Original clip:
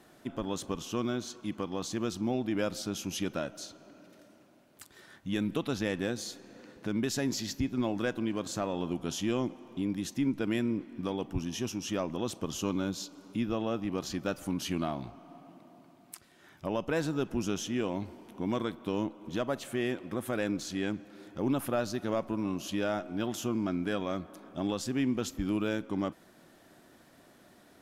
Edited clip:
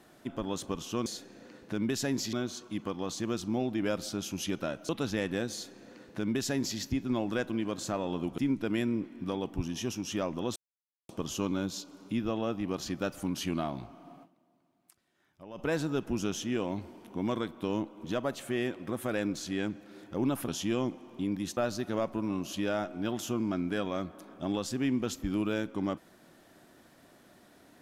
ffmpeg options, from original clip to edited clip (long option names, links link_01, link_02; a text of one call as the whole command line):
ffmpeg -i in.wav -filter_complex "[0:a]asplit=10[link_01][link_02][link_03][link_04][link_05][link_06][link_07][link_08][link_09][link_10];[link_01]atrim=end=1.062[link_11];[link_02]atrim=start=6.198:end=7.472[link_12];[link_03]atrim=start=1.058:end=3.622[link_13];[link_04]atrim=start=5.568:end=9.062[link_14];[link_05]atrim=start=10.148:end=12.33,asetpts=PTS-STARTPTS,afade=type=out:start_time=2.178:duration=0.004:curve=hsin,apad=pad_dur=0.53[link_15];[link_06]atrim=start=12.33:end=15.7,asetpts=PTS-STARTPTS,afade=type=in:duration=0.004:curve=hsin,afade=type=out:start_time=3.14:duration=0.23:curve=exp:silence=0.177828[link_16];[link_07]atrim=start=15.7:end=16.6,asetpts=PTS-STARTPTS,volume=-15dB[link_17];[link_08]atrim=start=16.6:end=21.722,asetpts=PTS-STARTPTS,afade=type=in:duration=0.23:curve=exp:silence=0.177828[link_18];[link_09]atrim=start=9.058:end=10.152[link_19];[link_10]atrim=start=21.718[link_20];[link_11][link_12]acrossfade=duration=0.004:curve1=hsin:curve2=hsin[link_21];[link_21][link_13]acrossfade=duration=0.004:curve1=hsin:curve2=hsin[link_22];[link_22][link_14]acrossfade=duration=0.004:curve1=hsin:curve2=hsin[link_23];[link_15][link_16][link_17][link_18]concat=n=4:v=0:a=1[link_24];[link_23][link_24]acrossfade=duration=0.004:curve1=hsin:curve2=hsin[link_25];[link_25][link_19]acrossfade=duration=0.004:curve1=hsin:curve2=hsin[link_26];[link_26][link_20]acrossfade=duration=0.004:curve1=hsin:curve2=hsin" out.wav